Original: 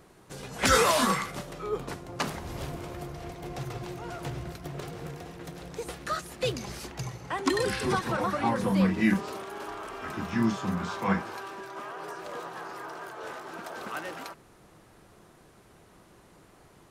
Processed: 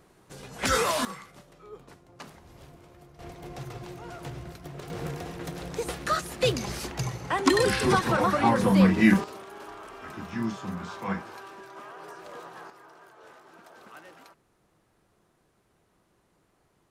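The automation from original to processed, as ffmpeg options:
-af "asetnsamples=n=441:p=0,asendcmd='1.05 volume volume -14dB;3.19 volume volume -3dB;4.9 volume volume 5dB;9.24 volume volume -4.5dB;12.7 volume volume -12dB',volume=-3dB"

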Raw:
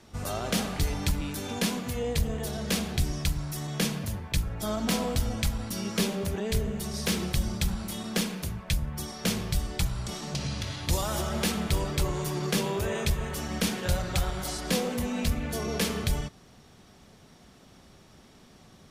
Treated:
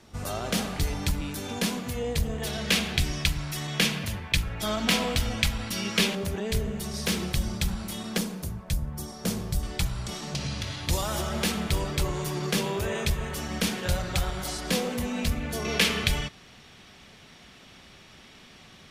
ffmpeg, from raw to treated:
-af "asetnsamples=n=441:p=0,asendcmd='2.42 equalizer g 10.5;6.15 equalizer g 2;8.18 equalizer g -7.5;9.63 equalizer g 2.5;15.65 equalizer g 12',equalizer=f=2.6k:t=o:w=1.8:g=1"

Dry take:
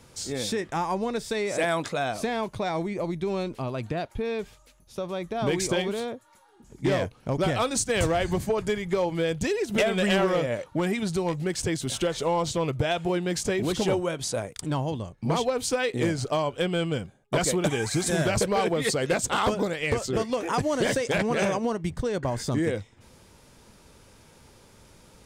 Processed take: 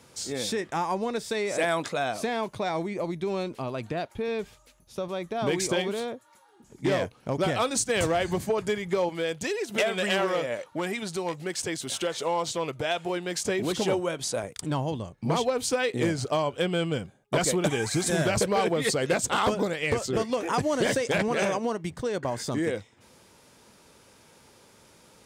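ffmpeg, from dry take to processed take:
-af "asetnsamples=n=441:p=0,asendcmd='4.28 highpass f 61;5.08 highpass f 160;9.09 highpass f 460;13.45 highpass f 190;14.43 highpass f 84;21.28 highpass f 230',highpass=f=170:p=1"

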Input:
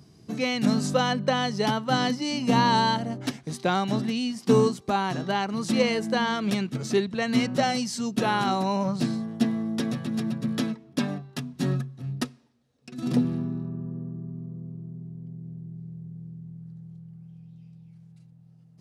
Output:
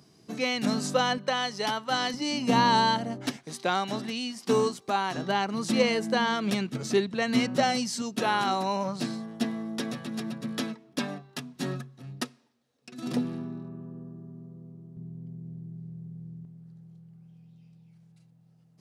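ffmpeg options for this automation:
-af "asetnsamples=n=441:p=0,asendcmd='1.18 highpass f 770;2.14 highpass f 200;3.37 highpass f 500;5.16 highpass f 170;8.02 highpass f 390;14.97 highpass f 110;16.45 highpass f 300',highpass=f=330:p=1"

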